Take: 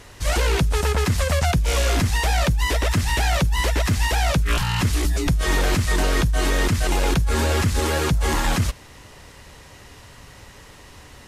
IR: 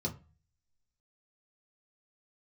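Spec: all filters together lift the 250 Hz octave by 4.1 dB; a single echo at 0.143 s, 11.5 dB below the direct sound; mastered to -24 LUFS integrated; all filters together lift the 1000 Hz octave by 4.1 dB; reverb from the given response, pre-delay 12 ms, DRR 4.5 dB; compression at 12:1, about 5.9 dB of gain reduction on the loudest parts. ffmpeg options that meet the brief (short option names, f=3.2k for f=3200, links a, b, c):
-filter_complex "[0:a]equalizer=f=250:t=o:g=5.5,equalizer=f=1k:t=o:g=5,acompressor=threshold=-19dB:ratio=12,aecho=1:1:143:0.266,asplit=2[a][b];[1:a]atrim=start_sample=2205,adelay=12[c];[b][c]afir=irnorm=-1:irlink=0,volume=-7dB[d];[a][d]amix=inputs=2:normalize=0,volume=-4dB"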